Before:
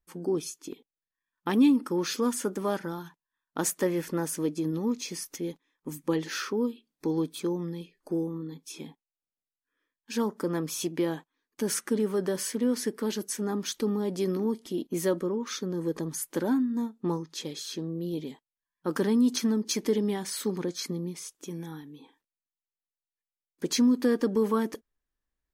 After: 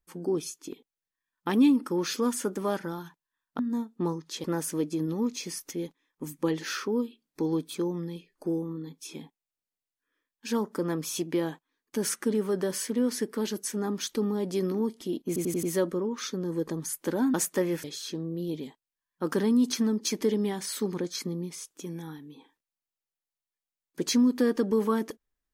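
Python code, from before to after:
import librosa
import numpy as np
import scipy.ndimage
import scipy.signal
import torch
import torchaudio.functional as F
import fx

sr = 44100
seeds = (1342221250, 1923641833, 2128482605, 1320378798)

y = fx.edit(x, sr, fx.swap(start_s=3.59, length_s=0.5, other_s=16.63, other_length_s=0.85),
    fx.stutter(start_s=14.92, slice_s=0.09, count=5), tone=tone)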